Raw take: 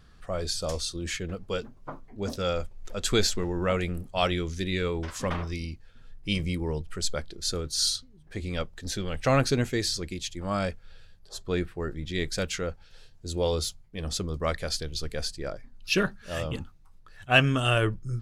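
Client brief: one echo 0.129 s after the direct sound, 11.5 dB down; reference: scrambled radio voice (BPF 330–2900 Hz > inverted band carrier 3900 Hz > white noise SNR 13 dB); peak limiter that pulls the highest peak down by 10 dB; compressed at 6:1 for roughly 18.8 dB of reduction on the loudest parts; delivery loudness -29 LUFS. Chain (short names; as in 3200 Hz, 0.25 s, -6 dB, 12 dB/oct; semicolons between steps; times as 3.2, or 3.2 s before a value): compressor 6:1, threshold -35 dBFS; limiter -32 dBFS; BPF 330–2900 Hz; echo 0.129 s -11.5 dB; inverted band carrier 3900 Hz; white noise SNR 13 dB; gain +14.5 dB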